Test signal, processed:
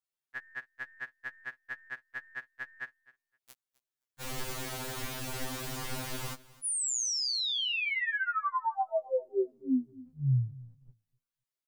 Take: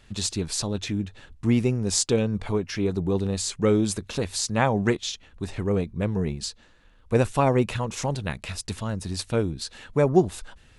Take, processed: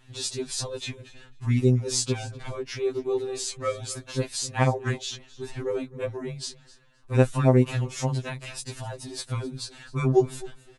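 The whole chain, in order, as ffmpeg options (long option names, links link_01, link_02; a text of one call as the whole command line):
ffmpeg -i in.wav -af "aeval=exprs='0.596*(cos(1*acos(clip(val(0)/0.596,-1,1)))-cos(1*PI/2))+0.00668*(cos(2*acos(clip(val(0)/0.596,-1,1)))-cos(2*PI/2))':channel_layout=same,aecho=1:1:259|518:0.0944|0.0151,afftfilt=real='re*2.45*eq(mod(b,6),0)':imag='im*2.45*eq(mod(b,6),0)':win_size=2048:overlap=0.75" out.wav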